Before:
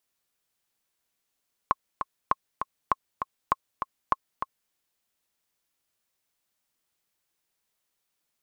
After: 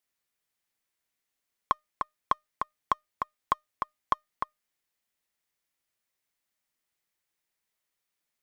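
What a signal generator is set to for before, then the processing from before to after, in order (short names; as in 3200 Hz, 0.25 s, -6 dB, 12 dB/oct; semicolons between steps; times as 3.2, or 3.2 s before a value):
metronome 199 bpm, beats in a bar 2, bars 5, 1080 Hz, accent 7.5 dB -8 dBFS
bell 2000 Hz +5 dB 0.49 oct; sample leveller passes 1; resonator 610 Hz, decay 0.21 s, harmonics all, mix 30%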